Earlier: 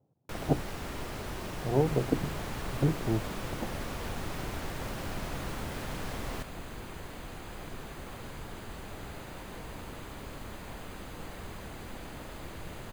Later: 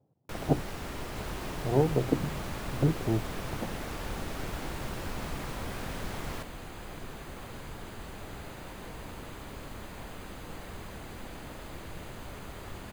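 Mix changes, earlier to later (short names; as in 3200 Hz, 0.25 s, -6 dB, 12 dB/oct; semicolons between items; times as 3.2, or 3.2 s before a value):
second sound: entry -0.70 s; reverb: on, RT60 0.40 s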